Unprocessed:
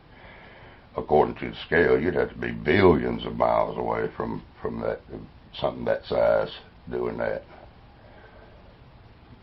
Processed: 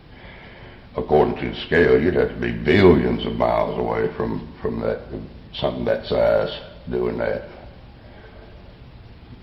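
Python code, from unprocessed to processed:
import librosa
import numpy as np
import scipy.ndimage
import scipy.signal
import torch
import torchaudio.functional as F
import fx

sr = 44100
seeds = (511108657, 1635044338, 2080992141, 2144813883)

p1 = fx.peak_eq(x, sr, hz=1000.0, db=-6.0, octaves=2.0)
p2 = 10.0 ** (-21.5 / 20.0) * np.tanh(p1 / 10.0 ** (-21.5 / 20.0))
p3 = p1 + (p2 * 10.0 ** (-5.0 / 20.0))
p4 = fx.rev_plate(p3, sr, seeds[0], rt60_s=1.1, hf_ratio=0.9, predelay_ms=0, drr_db=10.5)
y = p4 * 10.0 ** (4.0 / 20.0)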